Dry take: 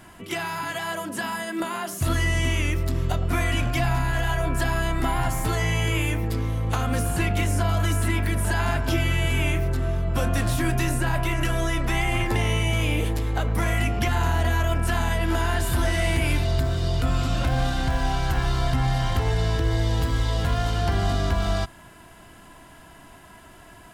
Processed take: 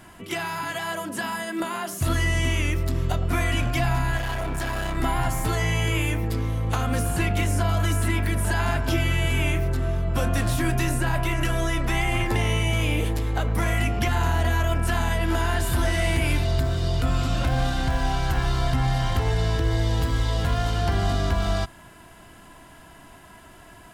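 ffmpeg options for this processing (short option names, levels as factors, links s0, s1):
-filter_complex "[0:a]asettb=1/sr,asplit=3[s0][s1][s2];[s0]atrim=end=4.174[s3];[s1]atrim=start=4.17:end=4.97,asetpts=PTS-STARTPTS,afade=t=in:d=0.004:c=qsin,afade=t=out:st=0.796:d=0.004:c=qsin,asoftclip=type=hard:threshold=0.0596[s4];[s2]atrim=start=4.966[s5];[s3][s4]acrossfade=d=0.004:c1=hsin:c2=qsin[s6];[s6][s5]acrossfade=d=0.004:c1=qsin:c2=hsin"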